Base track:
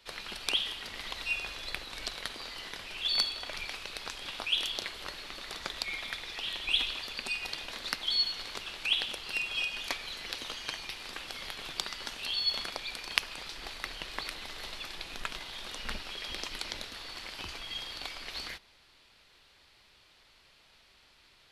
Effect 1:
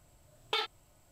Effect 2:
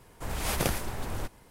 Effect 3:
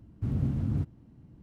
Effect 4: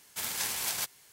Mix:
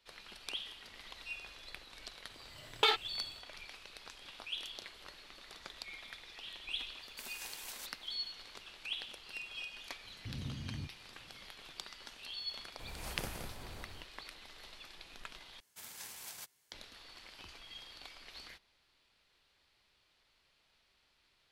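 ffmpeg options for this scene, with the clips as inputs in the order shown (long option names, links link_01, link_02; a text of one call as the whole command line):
ffmpeg -i bed.wav -i cue0.wav -i cue1.wav -i cue2.wav -i cue3.wav -filter_complex "[4:a]asplit=2[link_01][link_02];[0:a]volume=-11.5dB[link_03];[1:a]dynaudnorm=framelen=130:gausssize=3:maxgain=7dB[link_04];[link_01]highpass=frequency=270:width=0.5412,highpass=frequency=270:width=1.3066[link_05];[2:a]aecho=1:1:169.1|201.2:0.501|0.316[link_06];[link_03]asplit=2[link_07][link_08];[link_07]atrim=end=15.604[link_09];[link_02]atrim=end=1.12,asetpts=PTS-STARTPTS,volume=-15.5dB[link_10];[link_08]atrim=start=16.716[link_11];[link_04]atrim=end=1.11,asetpts=PTS-STARTPTS,volume=-3dB,afade=type=in:duration=0.004:curve=hsin,afade=type=out:start_time=1.106:duration=0.004:curve=hsin,adelay=2300[link_12];[link_05]atrim=end=1.12,asetpts=PTS-STARTPTS,volume=-15dB,afade=type=in:duration=0.004:curve=hsin,afade=type=out:start_time=1.116:duration=0.004:curve=hsin,adelay=7010[link_13];[3:a]atrim=end=1.42,asetpts=PTS-STARTPTS,volume=-14dB,afade=type=in:duration=0.004:curve=hsin,afade=type=out:start_time=1.416:duration=0.004:curve=hsin,adelay=10030[link_14];[link_06]atrim=end=1.5,asetpts=PTS-STARTPTS,volume=-15dB,afade=type=in:duration=0.004:curve=hsin,afade=type=out:start_time=1.496:duration=0.004:curve=hsin,adelay=12580[link_15];[link_09][link_10]acrossfade=duration=0.004:curve1=hsin:curve2=hsin[link_16];[link_16][link_11]acrossfade=duration=0.004:curve1=hsin:curve2=hsin[link_17];[link_17][link_12][link_13][link_14][link_15]amix=inputs=5:normalize=0" out.wav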